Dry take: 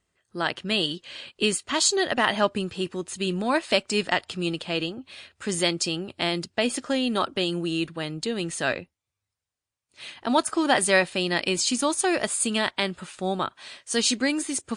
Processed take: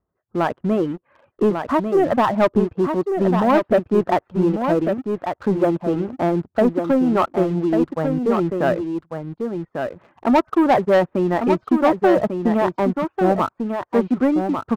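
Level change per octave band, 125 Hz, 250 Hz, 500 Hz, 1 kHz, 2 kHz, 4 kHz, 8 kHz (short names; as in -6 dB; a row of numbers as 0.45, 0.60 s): +9.5 dB, +9.5 dB, +9.5 dB, +8.0 dB, -3.0 dB, -14.0 dB, under -20 dB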